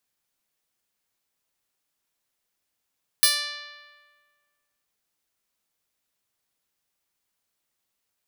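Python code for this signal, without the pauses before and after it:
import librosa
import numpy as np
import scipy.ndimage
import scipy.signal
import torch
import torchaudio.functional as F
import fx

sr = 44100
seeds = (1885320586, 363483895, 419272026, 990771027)

y = fx.pluck(sr, length_s=1.62, note=74, decay_s=1.7, pick=0.08, brightness='bright')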